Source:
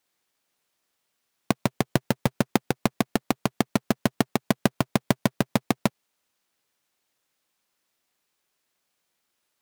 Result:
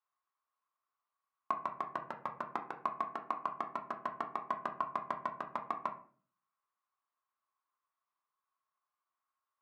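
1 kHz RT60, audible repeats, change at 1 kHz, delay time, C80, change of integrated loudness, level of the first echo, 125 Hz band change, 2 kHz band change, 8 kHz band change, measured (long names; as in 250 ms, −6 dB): 0.40 s, no echo audible, −4.0 dB, no echo audible, 15.5 dB, −13.0 dB, no echo audible, −31.0 dB, −14.5 dB, below −30 dB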